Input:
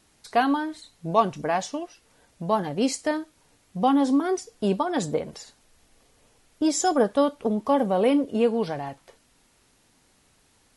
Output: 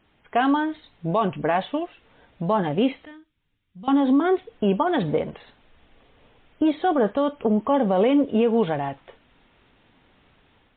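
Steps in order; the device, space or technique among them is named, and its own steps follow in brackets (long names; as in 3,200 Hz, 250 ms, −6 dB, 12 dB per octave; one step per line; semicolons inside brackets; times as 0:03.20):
0:03.05–0:03.88: guitar amp tone stack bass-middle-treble 6-0-2
low-bitrate web radio (automatic gain control gain up to 4.5 dB; brickwall limiter −13 dBFS, peak gain reduction 9 dB; level +1.5 dB; MP3 32 kbit/s 8,000 Hz)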